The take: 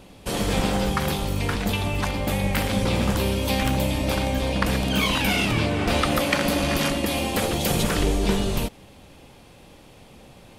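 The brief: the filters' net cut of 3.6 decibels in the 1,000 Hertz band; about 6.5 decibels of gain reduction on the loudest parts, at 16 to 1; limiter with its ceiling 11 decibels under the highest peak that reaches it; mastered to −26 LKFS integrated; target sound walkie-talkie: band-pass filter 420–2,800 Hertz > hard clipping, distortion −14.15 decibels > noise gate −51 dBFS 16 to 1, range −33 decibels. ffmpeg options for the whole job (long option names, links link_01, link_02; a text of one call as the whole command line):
ffmpeg -i in.wav -af "equalizer=frequency=1000:width_type=o:gain=-4.5,acompressor=threshold=-24dB:ratio=16,alimiter=limit=-23.5dB:level=0:latency=1,highpass=420,lowpass=2800,asoftclip=type=hard:threshold=-34.5dB,agate=range=-33dB:threshold=-51dB:ratio=16,volume=13dB" out.wav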